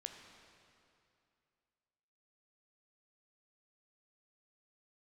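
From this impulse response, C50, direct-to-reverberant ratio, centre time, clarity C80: 5.0 dB, 3.5 dB, 58 ms, 6.0 dB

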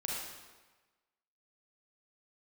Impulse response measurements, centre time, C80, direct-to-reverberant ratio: 87 ms, 1.0 dB, -4.0 dB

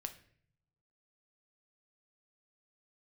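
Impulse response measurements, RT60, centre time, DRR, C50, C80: 0.60 s, 7 ms, 7.0 dB, 13.0 dB, 17.0 dB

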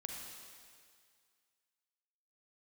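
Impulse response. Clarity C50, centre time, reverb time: 1.0 dB, 87 ms, 2.1 s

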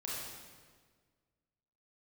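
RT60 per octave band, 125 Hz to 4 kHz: 2.0 s, 1.9 s, 1.7 s, 1.5 s, 1.4 s, 1.3 s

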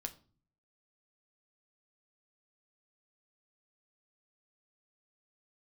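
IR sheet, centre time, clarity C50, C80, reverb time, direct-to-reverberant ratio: 6 ms, 16.5 dB, 21.5 dB, 0.40 s, 6.0 dB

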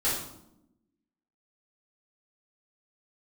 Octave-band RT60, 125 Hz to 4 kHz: 1.0 s, 1.3 s, 0.90 s, 0.75 s, 0.55 s, 0.55 s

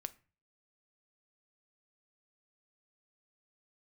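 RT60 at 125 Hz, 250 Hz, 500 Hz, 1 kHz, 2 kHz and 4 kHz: 0.55 s, 0.45 s, 0.35 s, 0.35 s, 0.40 s, 0.30 s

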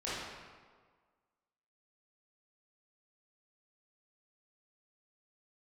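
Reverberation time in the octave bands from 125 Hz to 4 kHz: 1.5 s, 1.5 s, 1.6 s, 1.6 s, 1.3 s, 1.0 s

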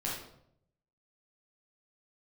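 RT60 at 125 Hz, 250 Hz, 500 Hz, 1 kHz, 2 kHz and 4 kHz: 1.1 s, 0.85 s, 0.80 s, 0.65 s, 0.55 s, 0.50 s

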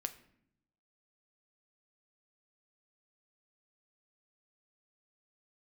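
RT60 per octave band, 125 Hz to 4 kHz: 1.1 s, 1.0 s, 0.75 s, 0.65 s, 0.65 s, 0.50 s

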